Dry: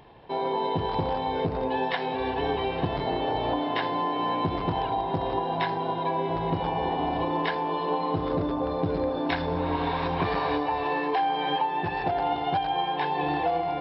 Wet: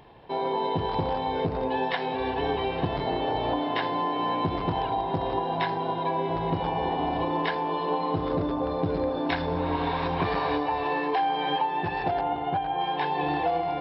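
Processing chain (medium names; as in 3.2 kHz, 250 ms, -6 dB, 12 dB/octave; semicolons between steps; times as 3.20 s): 12.21–12.81 s: distance through air 370 m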